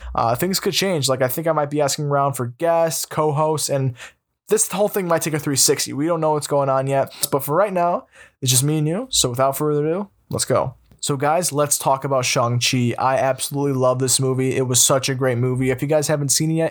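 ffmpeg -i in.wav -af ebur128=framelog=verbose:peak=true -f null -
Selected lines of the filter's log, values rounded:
Integrated loudness:
  I:         -19.1 LUFS
  Threshold: -29.2 LUFS
Loudness range:
  LRA:         2.3 LU
  Threshold: -39.3 LUFS
  LRA low:   -20.3 LUFS
  LRA high:  -18.0 LUFS
True peak:
  Peak:       -0.9 dBFS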